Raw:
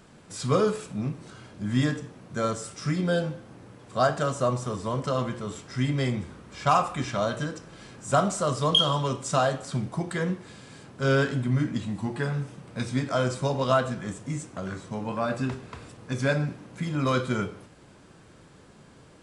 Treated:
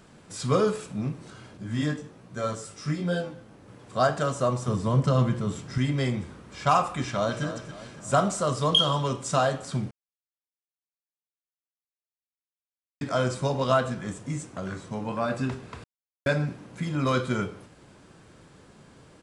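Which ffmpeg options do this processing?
-filter_complex "[0:a]asettb=1/sr,asplit=3[a][b][c];[a]atrim=end=1.574[d];[b]atrim=start=1.57:end=3.68,asetpts=PTS-STARTPTS,afade=t=in:d=0.004:c=qsin,afade=t=out:st=2.106:d=0.004:c=qsin,flanger=delay=16:depth=4.2:speed=1.2[e];[c]atrim=start=3.676[f];[d][e]acrossfade=d=0.004:c1=hsin:c2=qsin[g];[g][f]acrossfade=d=0.004:c1=qsin:c2=hsin,asettb=1/sr,asplit=3[h][i][j];[h]atrim=end=4.684[k];[i]atrim=start=4.68:end=5.78,asetpts=PTS-STARTPTS,afade=t=in:d=0.004:c=qsin,afade=t=out:st=1.096:d=0.004:c=qsin,equalizer=f=140:w=0.89:g=10[l];[j]atrim=start=5.776[m];[k][l]acrossfade=d=0.004:c1=hsin:c2=qsin[n];[n][m]acrossfade=d=0.004:c1=qsin:c2=hsin,asplit=2[o][p];[p]afade=t=in:st=7:d=0.01,afade=t=out:st=7.43:d=0.01,aecho=0:1:280|560|840|1120|1400:0.266073|0.119733|0.0538797|0.0242459|0.0109106[q];[o][q]amix=inputs=2:normalize=0,asplit=5[r][s][t][u][v];[r]atrim=end=9.91,asetpts=PTS-STARTPTS,afade=t=out:st=9.906:d=0.004:c=hsin[w];[s]atrim=start=9.91:end=13.01,asetpts=PTS-STARTPTS,volume=0[x];[t]atrim=start=13.01:end=15.84,asetpts=PTS-STARTPTS,afade=t=in:d=0.004:c=hsin,afade=t=out:st=2.826:d=0.004:c=hsin[y];[u]atrim=start=15.84:end=16.26,asetpts=PTS-STARTPTS,volume=0[z];[v]atrim=start=16.26,asetpts=PTS-STARTPTS,afade=t=in:d=0.004:c=hsin[aa];[w][x][y][z][aa]concat=n=5:v=0:a=1"

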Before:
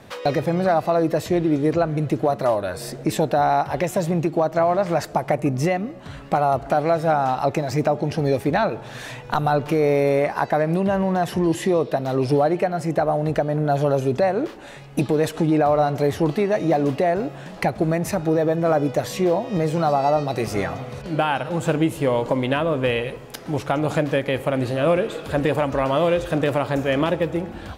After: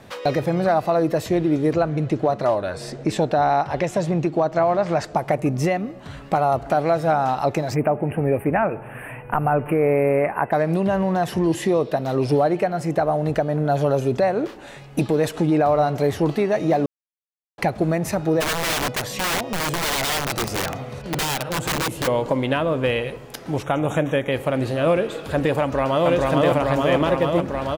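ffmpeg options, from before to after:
-filter_complex "[0:a]asettb=1/sr,asplit=3[a][b][c];[a]atrim=end=1.894[d];[b]atrim=start=1.89:end=5.16,asetpts=PTS-STARTPTS,afade=t=in:d=0.004:c=qsin,afade=t=out:st=3.266:d=0.004:c=qsin,lowpass=7.3k[e];[c]atrim=start=5.156[f];[d][e]acrossfade=d=0.004:c1=hsin:c2=qsin[g];[g][f]acrossfade=d=0.004:c1=qsin:c2=hsin,asplit=3[h][i][j];[h]afade=t=out:st=7.74:d=0.02[k];[i]asuperstop=centerf=5100:order=12:qfactor=0.83,afade=t=in:st=7.74:d=0.02,afade=t=out:st=10.51:d=0.02[l];[j]afade=t=in:st=10.51:d=0.02[m];[k][l][m]amix=inputs=3:normalize=0,asplit=3[n][o][p];[n]afade=t=out:st=18.4:d=0.02[q];[o]aeval=exprs='(mod(7.94*val(0)+1,2)-1)/7.94':c=same,afade=t=in:st=18.4:d=0.02,afade=t=out:st=22.06:d=0.02[r];[p]afade=t=in:st=22.06:d=0.02[s];[q][r][s]amix=inputs=3:normalize=0,asettb=1/sr,asplit=3[t][u][v];[t]atrim=end=23.634[w];[u]atrim=start=23.63:end=24.32,asetpts=PTS-STARTPTS,afade=t=in:d=0.004:c=qsin,afade=t=out:st=0.686:d=0.004:c=qsin,asuperstop=centerf=4600:order=20:qfactor=2.7[x];[v]atrim=start=24.316[y];[w][x]acrossfade=d=0.004:c1=hsin:c2=qsin[z];[z][y]acrossfade=d=0.004:c1=qsin:c2=hsin,asplit=2[aa][ab];[ab]afade=t=in:st=25.61:d=0.01,afade=t=out:st=26.08:d=0.01,aecho=0:1:440|880|1320|1760|2200|2640|3080|3520|3960|4400|4840|5280:0.891251|0.757563|0.643929|0.547339|0.465239|0.395453|0.336135|0.285715|0.242857|0.206429|0.175464|0.149145[ac];[aa][ac]amix=inputs=2:normalize=0,asplit=3[ad][ae][af];[ad]atrim=end=16.86,asetpts=PTS-STARTPTS,afade=t=out:st=16.856:d=0.004:c=hsin[ag];[ae]atrim=start=16.86:end=17.58,asetpts=PTS-STARTPTS,volume=0[ah];[af]atrim=start=17.58,asetpts=PTS-STARTPTS,afade=t=in:d=0.004:c=hsin[ai];[ag][ah][ai]concat=n=3:v=0:a=1"

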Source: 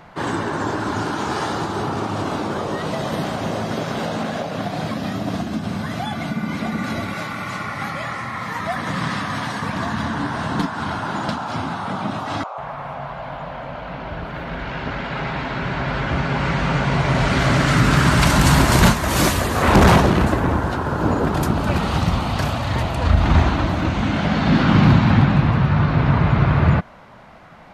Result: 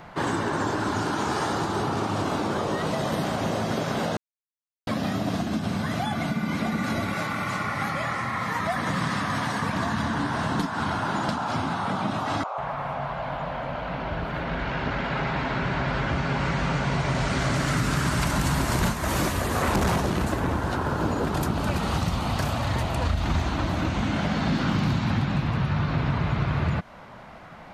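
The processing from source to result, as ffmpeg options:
-filter_complex "[0:a]asettb=1/sr,asplit=3[a][b][c];[a]atrim=end=14.394[d];[b]atrim=start=14.39:end=17.54,asetpts=PTS-STARTPTS,afade=t=in:d=0.004:c=qsin,afade=t=out:st=3.146:d=0.004:c=qsin,lowpass=9.4k[e];[c]atrim=start=17.536[f];[d][e]acrossfade=d=0.004:c1=hsin:c2=qsin[g];[g][f]acrossfade=d=0.004:c1=qsin:c2=hsin,asplit=3[h][i][j];[h]atrim=end=4.17,asetpts=PTS-STARTPTS,afade=t=out:st=4.166:d=0.004:c=hsin[k];[i]atrim=start=4.17:end=4.87,asetpts=PTS-STARTPTS,volume=0[l];[j]atrim=start=4.87,asetpts=PTS-STARTPTS,afade=t=in:d=0.004:c=hsin[m];[k][l][m]concat=n=3:v=0:a=1,acrossover=split=2500|5100[n][o][p];[n]acompressor=threshold=-23dB:ratio=4[q];[o]acompressor=threshold=-43dB:ratio=4[r];[p]acompressor=threshold=-37dB:ratio=4[s];[q][r][s]amix=inputs=3:normalize=0"

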